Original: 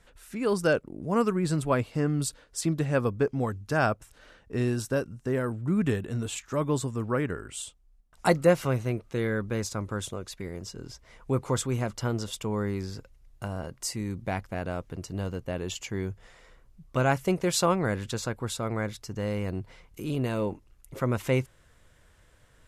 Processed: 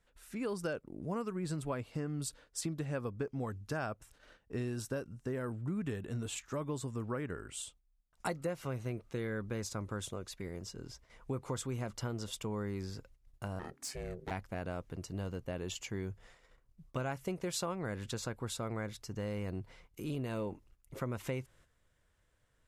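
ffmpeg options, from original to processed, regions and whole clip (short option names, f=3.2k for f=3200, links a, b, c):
-filter_complex "[0:a]asettb=1/sr,asplit=3[a][b][c];[a]atrim=end=13.594[d];[b]atrim=start=13.59:end=14.31,asetpts=PTS-STARTPTS,afade=t=in:d=0.004:c=qsin,afade=t=out:st=0.716:d=0.004:c=qsin,equalizer=f=1.6k:w=2.3:g=8,asoftclip=type=hard:threshold=-27.5dB,aeval=exprs='val(0)*sin(2*PI*270*n/s)':c=same[e];[c]atrim=start=14.306[f];[d][e]acrossfade=d=0.004:c1=hsin:c2=qsin[g];[g][f]acrossfade=d=0.004:c1=qsin:c2=hsin,agate=range=-9dB:threshold=-53dB:ratio=16:detection=peak,acompressor=threshold=-28dB:ratio=6,volume=-5.5dB"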